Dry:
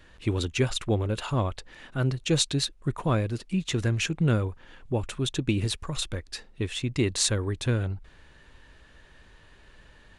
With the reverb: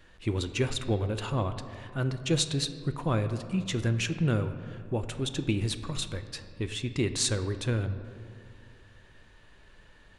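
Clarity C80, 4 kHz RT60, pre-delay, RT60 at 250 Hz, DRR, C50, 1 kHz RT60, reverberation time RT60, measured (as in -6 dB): 11.5 dB, 1.1 s, 5 ms, 2.5 s, 9.0 dB, 10.5 dB, 2.2 s, 2.4 s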